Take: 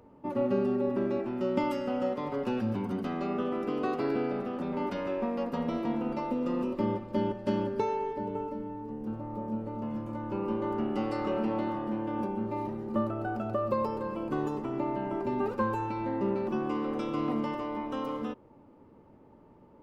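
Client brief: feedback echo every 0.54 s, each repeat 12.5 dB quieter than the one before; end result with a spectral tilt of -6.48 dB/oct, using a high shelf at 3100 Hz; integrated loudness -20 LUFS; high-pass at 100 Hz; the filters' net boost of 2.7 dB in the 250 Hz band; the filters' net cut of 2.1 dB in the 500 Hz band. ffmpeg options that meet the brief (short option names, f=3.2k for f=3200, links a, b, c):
-af "highpass=100,equalizer=f=250:t=o:g=4.5,equalizer=f=500:t=o:g=-4.5,highshelf=f=3.1k:g=4.5,aecho=1:1:540|1080|1620:0.237|0.0569|0.0137,volume=11dB"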